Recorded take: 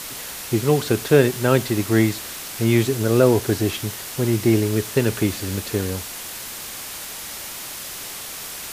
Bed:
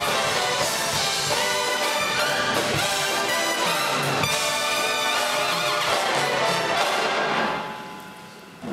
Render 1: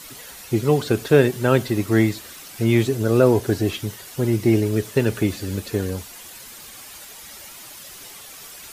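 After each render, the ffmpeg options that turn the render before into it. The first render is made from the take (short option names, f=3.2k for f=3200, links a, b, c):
-af "afftdn=nr=10:nf=-34"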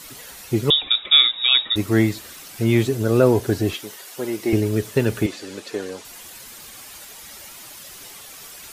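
-filter_complex "[0:a]asettb=1/sr,asplit=3[a][b][c];[a]atrim=end=0.704[d];[b]atrim=start=0.7:end=1.76,asetpts=PTS-STARTPTS,afade=t=in:d=0.004:c=qsin,afade=t=out:st=1.056:d=0.004:c=qsin,lowpass=f=3.3k:t=q:w=0.5098,lowpass=f=3.3k:t=q:w=0.6013,lowpass=f=3.3k:t=q:w=0.9,lowpass=f=3.3k:t=q:w=2.563,afreqshift=-3900[e];[c]atrim=start=1.756[f];[d][e]acrossfade=d=0.004:c1=hsin:c2=qsin[g];[g][f]acrossfade=d=0.004:c1=qsin:c2=hsin,asettb=1/sr,asplit=3[h][i][j];[h]atrim=end=3.744[k];[i]atrim=start=3.74:end=4.53,asetpts=PTS-STARTPTS,afade=t=in:d=0.004:c=qsin,afade=t=out:st=0.786:d=0.004:c=qsin,highpass=370[l];[j]atrim=start=4.526[m];[k][l]acrossfade=d=0.004:c1=hsin:c2=qsin[n];[n][m]acrossfade=d=0.004:c1=qsin:c2=hsin,asettb=1/sr,asplit=3[o][p][q];[o]atrim=end=5.264[r];[p]atrim=start=5.26:end=6.05,asetpts=PTS-STARTPTS,afade=t=in:d=0.004:c=qsin,afade=t=out:st=0.786:d=0.004:c=qsin,highpass=360,lowpass=7.7k[s];[q]atrim=start=6.046[t];[r][s]acrossfade=d=0.004:c1=hsin:c2=qsin[u];[u][t]acrossfade=d=0.004:c1=qsin:c2=hsin"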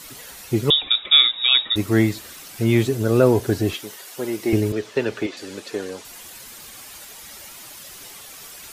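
-filter_complex "[0:a]asettb=1/sr,asplit=3[a][b][c];[a]atrim=end=4.724[d];[b]atrim=start=4.72:end=5.37,asetpts=PTS-STARTPTS,afade=t=in:d=0.004:c=qsin,afade=t=out:st=0.646:d=0.004:c=qsin,acrossover=split=280 6300:gain=0.2 1 0.112[e][f][g];[e][f][g]amix=inputs=3:normalize=0[h];[c]atrim=start=5.366[i];[d][h]acrossfade=d=0.004:c1=hsin:c2=qsin[j];[j][i]acrossfade=d=0.004:c1=qsin:c2=hsin"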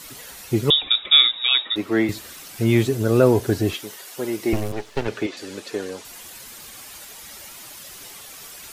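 -filter_complex "[0:a]asettb=1/sr,asplit=3[a][b][c];[a]atrim=end=1.384[d];[b]atrim=start=1.38:end=2.09,asetpts=PTS-STARTPTS,afade=t=in:d=0.004:c=qsin,afade=t=out:st=0.706:d=0.004:c=qsin,acrossover=split=220 4200:gain=0.126 1 0.224[e][f][g];[e][f][g]amix=inputs=3:normalize=0[h];[c]atrim=start=2.086[i];[d][h]acrossfade=d=0.004:c1=hsin:c2=qsin[j];[j][i]acrossfade=d=0.004:c1=qsin:c2=hsin,asettb=1/sr,asplit=3[k][l][m];[k]atrim=end=4.534[n];[l]atrim=start=4.53:end=5.08,asetpts=PTS-STARTPTS,afade=t=in:d=0.004:c=qsin,afade=t=out:st=0.546:d=0.004:c=qsin,aeval=exprs='max(val(0),0)':c=same[o];[m]atrim=start=5.076[p];[n][o]acrossfade=d=0.004:c1=hsin:c2=qsin[q];[q][p]acrossfade=d=0.004:c1=qsin:c2=hsin"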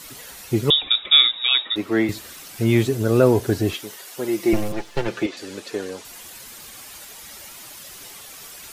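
-filter_complex "[0:a]asettb=1/sr,asplit=3[a][b][c];[a]atrim=end=4.284[d];[b]atrim=start=4.28:end=5.26,asetpts=PTS-STARTPTS,afade=t=in:d=0.004:c=qsin,afade=t=out:st=0.976:d=0.004:c=qsin,aecho=1:1:5.8:0.65,atrim=end_sample=43218[e];[c]atrim=start=5.256[f];[d][e]acrossfade=d=0.004:c1=hsin:c2=qsin[g];[g][f]acrossfade=d=0.004:c1=qsin:c2=hsin"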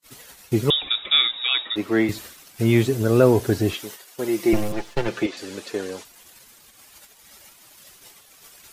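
-filter_complex "[0:a]agate=range=-39dB:threshold=-38dB:ratio=16:detection=peak,acrossover=split=3500[a][b];[b]acompressor=threshold=-32dB:ratio=4:attack=1:release=60[c];[a][c]amix=inputs=2:normalize=0"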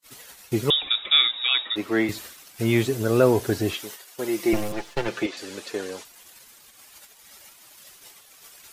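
-af "lowshelf=f=370:g=-5.5"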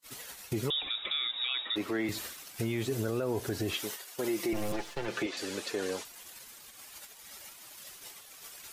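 -af "acompressor=threshold=-25dB:ratio=6,alimiter=limit=-23.5dB:level=0:latency=1:release=19"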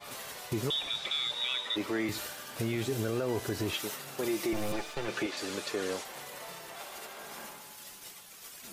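-filter_complex "[1:a]volume=-23.5dB[a];[0:a][a]amix=inputs=2:normalize=0"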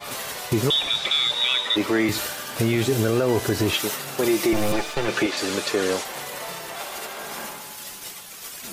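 -af "volume=11dB"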